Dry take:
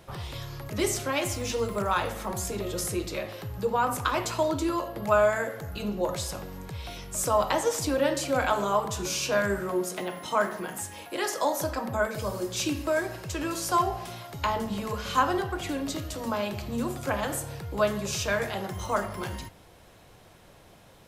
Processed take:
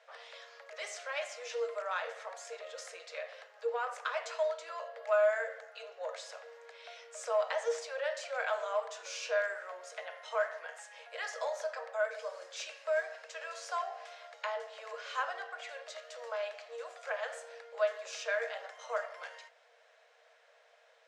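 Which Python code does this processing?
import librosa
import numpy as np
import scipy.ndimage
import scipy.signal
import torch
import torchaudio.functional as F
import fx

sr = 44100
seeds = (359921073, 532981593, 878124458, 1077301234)

p1 = scipy.signal.sosfilt(scipy.signal.butter(4, 7200.0, 'lowpass', fs=sr, output='sos'), x)
p2 = 10.0 ** (-25.0 / 20.0) * np.tanh(p1 / 10.0 ** (-25.0 / 20.0))
p3 = p1 + (p2 * librosa.db_to_amplitude(-10.0))
p4 = scipy.signal.sosfilt(scipy.signal.cheby1(6, 9, 450.0, 'highpass', fs=sr, output='sos'), p3)
y = p4 * librosa.db_to_amplitude(-5.5)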